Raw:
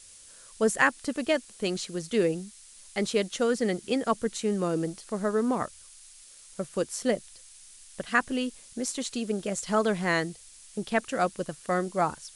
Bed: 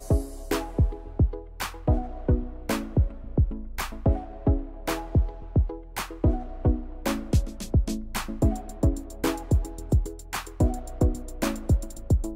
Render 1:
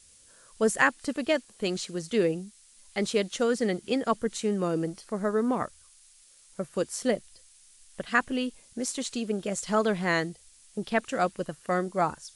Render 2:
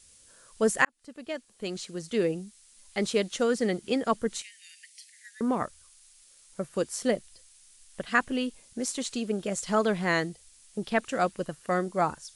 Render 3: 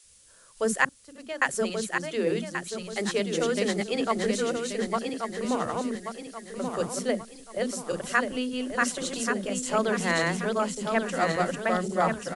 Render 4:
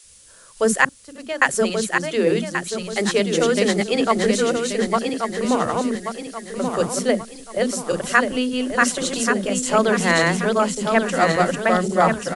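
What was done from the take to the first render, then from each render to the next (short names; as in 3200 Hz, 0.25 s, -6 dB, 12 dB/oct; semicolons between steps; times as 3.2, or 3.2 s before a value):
noise print and reduce 6 dB
0.85–3.07 fade in equal-power; 4.42–5.41 steep high-pass 1800 Hz 96 dB/oct
regenerating reverse delay 0.566 s, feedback 62%, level -1.5 dB; bands offset in time highs, lows 40 ms, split 300 Hz
gain +8 dB; limiter -1 dBFS, peak gain reduction 2 dB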